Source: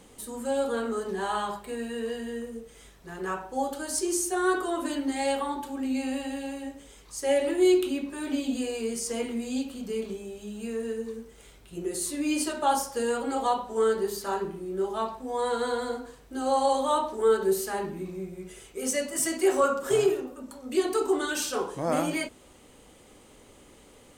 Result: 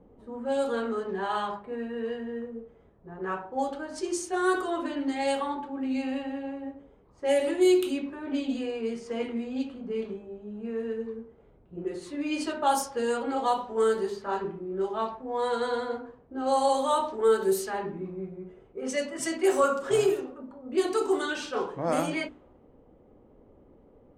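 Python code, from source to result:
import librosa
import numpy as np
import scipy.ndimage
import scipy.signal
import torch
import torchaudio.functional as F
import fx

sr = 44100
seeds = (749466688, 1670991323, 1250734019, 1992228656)

y = fx.hum_notches(x, sr, base_hz=50, count=8)
y = fx.env_lowpass(y, sr, base_hz=580.0, full_db=-21.0)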